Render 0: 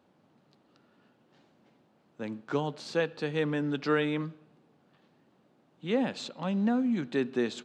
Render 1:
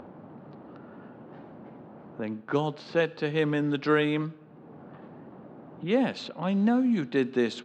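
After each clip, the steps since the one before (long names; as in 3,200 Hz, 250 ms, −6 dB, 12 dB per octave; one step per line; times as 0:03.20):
low-pass that shuts in the quiet parts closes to 1,200 Hz, open at −24 dBFS
upward compression, threshold −35 dBFS
level +3.5 dB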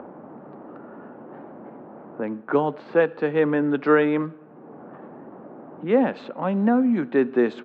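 three-way crossover with the lows and the highs turned down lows −13 dB, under 210 Hz, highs −22 dB, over 2,100 Hz
level +7 dB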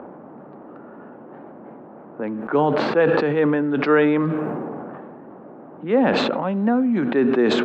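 level that may fall only so fast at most 22 dB per second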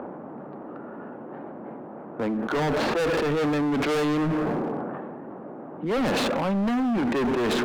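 hard clipping −24.5 dBFS, distortion −5 dB
level +2 dB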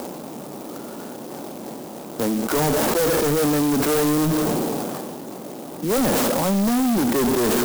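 converter with an unsteady clock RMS 0.1 ms
level +4.5 dB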